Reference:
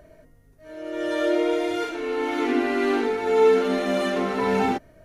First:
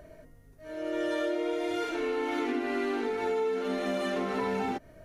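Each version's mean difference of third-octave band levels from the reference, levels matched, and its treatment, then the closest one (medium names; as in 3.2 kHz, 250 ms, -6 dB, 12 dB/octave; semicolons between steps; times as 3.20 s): 2.5 dB: compression 10:1, threshold -27 dBFS, peak gain reduction 13.5 dB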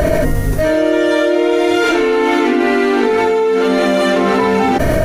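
5.5 dB: level flattener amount 100%; trim +1 dB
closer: first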